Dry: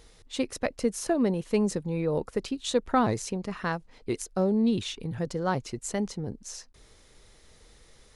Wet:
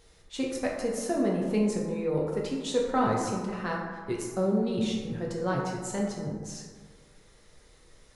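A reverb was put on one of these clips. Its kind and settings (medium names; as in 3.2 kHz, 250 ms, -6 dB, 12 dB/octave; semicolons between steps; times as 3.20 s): plate-style reverb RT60 1.6 s, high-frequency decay 0.4×, DRR -2.5 dB; trim -5 dB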